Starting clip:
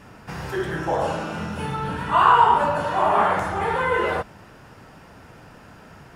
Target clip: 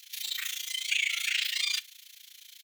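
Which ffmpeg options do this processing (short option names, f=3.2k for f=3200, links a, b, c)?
-filter_complex "[0:a]highpass=f=1.1k:w=0.5412,highpass=f=1.1k:w=1.3066,acompressor=threshold=-23dB:ratio=10,tremolo=f=12:d=0.86,crystalizer=i=4:c=0,asplit=2[a][b];[b]adelay=120,highpass=300,lowpass=3.4k,asoftclip=type=hard:threshold=-20.5dB,volume=-25dB[c];[a][c]amix=inputs=2:normalize=0,asetrate=103194,aresample=44100"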